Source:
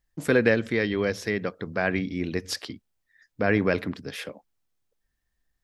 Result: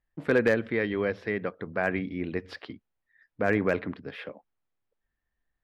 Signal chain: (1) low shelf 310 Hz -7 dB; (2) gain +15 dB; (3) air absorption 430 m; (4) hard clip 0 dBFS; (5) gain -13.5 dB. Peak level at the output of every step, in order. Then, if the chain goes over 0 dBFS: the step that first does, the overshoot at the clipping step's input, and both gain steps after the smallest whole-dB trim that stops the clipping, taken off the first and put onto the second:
-7.0, +8.0, +5.5, 0.0, -13.5 dBFS; step 2, 5.5 dB; step 2 +9 dB, step 5 -7.5 dB

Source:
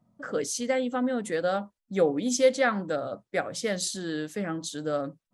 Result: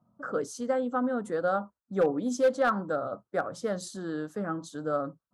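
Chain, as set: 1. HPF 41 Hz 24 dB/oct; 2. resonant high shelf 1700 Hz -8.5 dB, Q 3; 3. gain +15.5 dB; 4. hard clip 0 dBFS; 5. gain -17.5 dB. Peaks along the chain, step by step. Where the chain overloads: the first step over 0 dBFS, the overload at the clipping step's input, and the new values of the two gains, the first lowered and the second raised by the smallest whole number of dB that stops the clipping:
-10.0, -10.0, +5.5, 0.0, -17.5 dBFS; step 3, 5.5 dB; step 3 +9.5 dB, step 5 -11.5 dB

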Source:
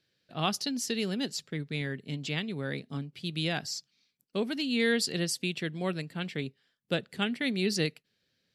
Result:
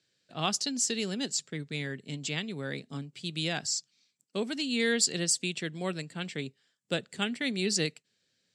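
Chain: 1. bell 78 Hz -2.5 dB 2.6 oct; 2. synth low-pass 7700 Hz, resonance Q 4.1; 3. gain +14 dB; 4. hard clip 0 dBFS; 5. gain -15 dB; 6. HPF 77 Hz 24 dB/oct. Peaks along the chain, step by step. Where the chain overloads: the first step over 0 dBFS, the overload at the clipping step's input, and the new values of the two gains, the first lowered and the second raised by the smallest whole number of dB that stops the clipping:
-14.5, -11.0, +3.0, 0.0, -15.0, -14.0 dBFS; step 3, 3.0 dB; step 3 +11 dB, step 5 -12 dB

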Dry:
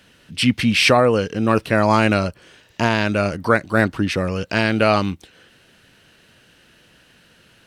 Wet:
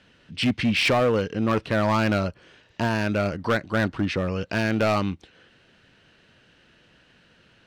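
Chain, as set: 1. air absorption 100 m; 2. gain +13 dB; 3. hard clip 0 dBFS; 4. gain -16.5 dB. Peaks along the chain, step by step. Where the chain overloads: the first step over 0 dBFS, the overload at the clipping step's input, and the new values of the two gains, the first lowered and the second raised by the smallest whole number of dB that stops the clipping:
-3.5, +9.5, 0.0, -16.5 dBFS; step 2, 9.5 dB; step 2 +3 dB, step 4 -6.5 dB

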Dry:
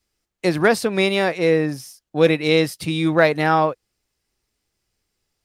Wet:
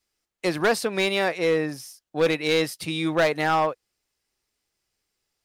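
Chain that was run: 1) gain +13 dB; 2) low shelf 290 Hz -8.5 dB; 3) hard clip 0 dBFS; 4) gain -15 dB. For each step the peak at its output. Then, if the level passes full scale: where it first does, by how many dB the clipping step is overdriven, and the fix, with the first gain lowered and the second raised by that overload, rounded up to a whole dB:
+9.5, +9.5, 0.0, -15.0 dBFS; step 1, 9.5 dB; step 1 +3 dB, step 4 -5 dB

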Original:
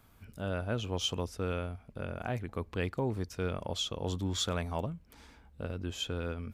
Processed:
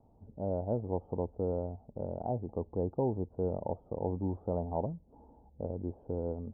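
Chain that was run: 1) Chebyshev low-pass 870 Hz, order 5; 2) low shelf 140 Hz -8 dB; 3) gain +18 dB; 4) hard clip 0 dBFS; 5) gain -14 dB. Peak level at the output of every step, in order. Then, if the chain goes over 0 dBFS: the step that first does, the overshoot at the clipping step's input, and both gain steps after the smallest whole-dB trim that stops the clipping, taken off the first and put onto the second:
-22.0, -22.5, -4.5, -4.5, -18.5 dBFS; no overload

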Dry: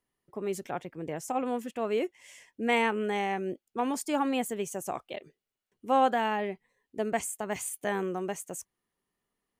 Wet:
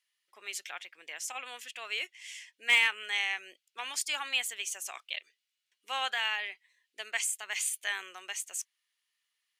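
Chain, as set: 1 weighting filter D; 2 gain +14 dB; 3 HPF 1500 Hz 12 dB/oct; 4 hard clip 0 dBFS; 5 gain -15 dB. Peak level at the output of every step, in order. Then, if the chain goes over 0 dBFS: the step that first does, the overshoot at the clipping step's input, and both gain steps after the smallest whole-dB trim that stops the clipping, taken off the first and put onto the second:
-9.0, +5.0, +5.0, 0.0, -15.0 dBFS; step 2, 5.0 dB; step 2 +9 dB, step 5 -10 dB

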